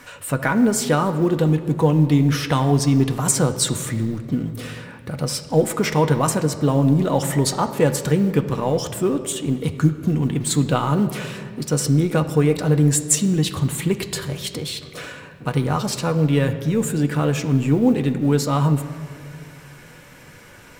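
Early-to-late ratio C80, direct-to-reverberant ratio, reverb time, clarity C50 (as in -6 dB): 12.5 dB, 5.5 dB, 2.2 s, 11.5 dB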